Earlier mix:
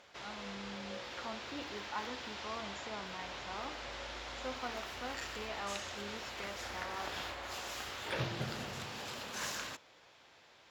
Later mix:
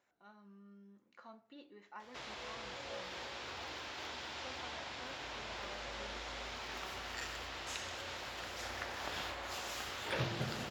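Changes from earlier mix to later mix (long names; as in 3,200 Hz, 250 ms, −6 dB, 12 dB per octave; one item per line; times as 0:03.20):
speech −10.5 dB
background: entry +2.00 s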